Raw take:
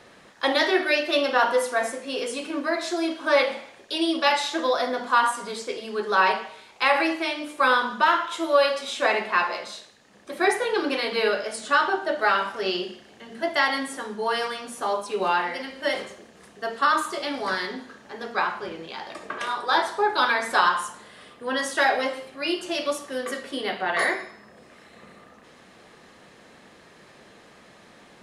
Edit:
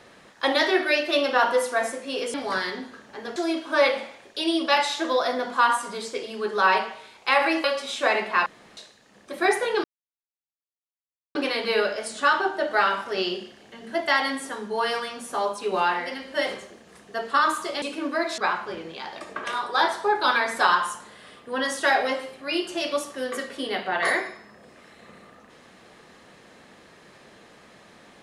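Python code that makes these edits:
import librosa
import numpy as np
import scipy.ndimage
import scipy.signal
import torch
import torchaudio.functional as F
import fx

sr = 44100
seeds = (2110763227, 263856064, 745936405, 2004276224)

y = fx.edit(x, sr, fx.swap(start_s=2.34, length_s=0.56, other_s=17.3, other_length_s=1.02),
    fx.cut(start_s=7.18, length_s=1.45),
    fx.room_tone_fill(start_s=9.45, length_s=0.31),
    fx.insert_silence(at_s=10.83, length_s=1.51), tone=tone)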